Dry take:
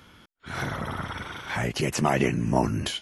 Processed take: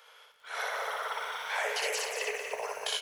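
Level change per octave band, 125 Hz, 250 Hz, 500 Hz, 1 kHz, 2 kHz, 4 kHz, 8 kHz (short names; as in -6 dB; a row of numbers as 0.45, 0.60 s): under -40 dB, under -35 dB, -6.5 dB, -5.0 dB, -1.0 dB, -1.0 dB, -1.5 dB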